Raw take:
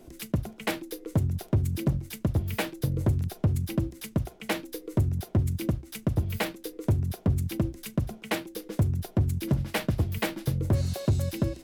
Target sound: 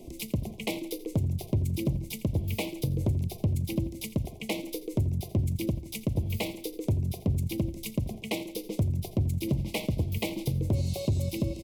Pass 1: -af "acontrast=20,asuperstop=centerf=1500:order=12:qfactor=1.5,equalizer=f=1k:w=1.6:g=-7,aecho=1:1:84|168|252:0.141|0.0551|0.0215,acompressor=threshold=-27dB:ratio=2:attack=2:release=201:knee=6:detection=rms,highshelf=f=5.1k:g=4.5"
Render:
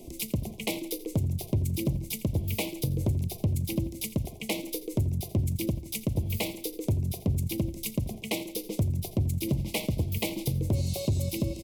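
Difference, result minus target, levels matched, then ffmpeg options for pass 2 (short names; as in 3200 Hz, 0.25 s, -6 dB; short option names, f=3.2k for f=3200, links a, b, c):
8000 Hz band +4.5 dB
-af "acontrast=20,asuperstop=centerf=1500:order=12:qfactor=1.5,equalizer=f=1k:w=1.6:g=-7,aecho=1:1:84|168|252:0.141|0.0551|0.0215,acompressor=threshold=-27dB:ratio=2:attack=2:release=201:knee=6:detection=rms,highshelf=f=5.1k:g=-2"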